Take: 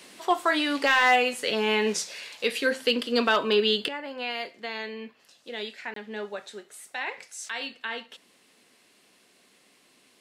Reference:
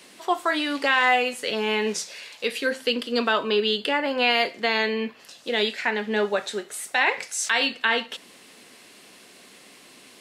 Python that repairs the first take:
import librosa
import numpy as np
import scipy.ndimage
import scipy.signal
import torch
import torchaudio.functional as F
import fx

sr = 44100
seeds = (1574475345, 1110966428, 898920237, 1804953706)

y = fx.fix_declip(x, sr, threshold_db=-12.5)
y = fx.fix_interpolate(y, sr, at_s=(5.94,), length_ms=23.0)
y = fx.gain(y, sr, db=fx.steps((0.0, 0.0), (3.88, 11.5)))